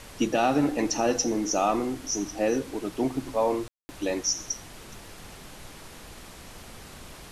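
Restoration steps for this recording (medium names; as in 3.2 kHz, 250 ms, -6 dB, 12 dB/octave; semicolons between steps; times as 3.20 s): de-click; room tone fill 3.68–3.89 s; noise reduction 27 dB, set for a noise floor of -45 dBFS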